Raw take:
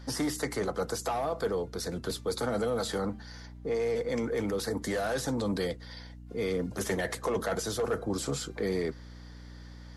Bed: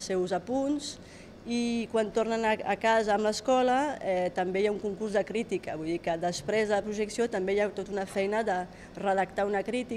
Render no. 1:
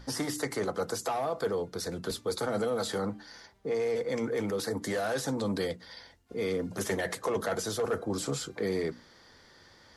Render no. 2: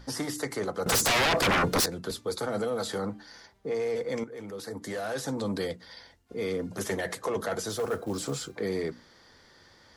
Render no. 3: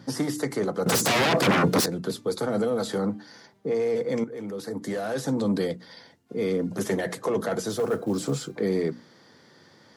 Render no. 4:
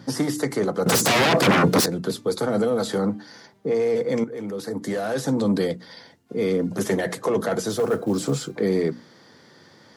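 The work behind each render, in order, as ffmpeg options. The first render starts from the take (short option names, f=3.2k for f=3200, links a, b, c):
-af "bandreject=f=60:t=h:w=6,bandreject=f=120:t=h:w=6,bandreject=f=180:t=h:w=6,bandreject=f=240:t=h:w=6,bandreject=f=300:t=h:w=6"
-filter_complex "[0:a]asettb=1/sr,asplit=3[a][b][c];[a]atrim=end=0.864[d];[b]atrim=start=0.86:end=1.86,asetpts=PTS-STARTPTS,afade=t=in:d=0.004:c=qsin,afade=t=out:st=0.996:d=0.004:c=qsin,aeval=exprs='0.0944*sin(PI/2*5.62*val(0)/0.0944)':c=same[e];[c]atrim=start=1.856[f];[d][e]acrossfade=d=0.004:c1=hsin:c2=qsin[g];[g][f]acrossfade=d=0.004:c1=qsin:c2=hsin,asettb=1/sr,asplit=3[h][i][j];[h]atrim=end=7.694[k];[i]atrim=start=7.69:end=8.55,asetpts=PTS-STARTPTS,afade=t=in:d=0.004:c=qsin,afade=t=out:st=0.856:d=0.004:c=qsin,acrusher=bits=6:mode=log:mix=0:aa=0.000001[l];[j]atrim=start=8.546[m];[k][l]acrossfade=d=0.004:c1=hsin:c2=qsin[n];[n][m]acrossfade=d=0.004:c1=qsin:c2=hsin,asplit=2[o][p];[o]atrim=end=4.24,asetpts=PTS-STARTPTS,afade=t=out:st=4.236:d=0.004:c=hsin:silence=0.223872[q];[p]atrim=start=4.24,asetpts=PTS-STARTPTS,afade=t=in:d=1.15:silence=0.223872[r];[q][r]concat=n=2:v=0:a=1"
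-af "highpass=f=130:w=0.5412,highpass=f=130:w=1.3066,lowshelf=f=430:g=10"
-af "volume=3.5dB"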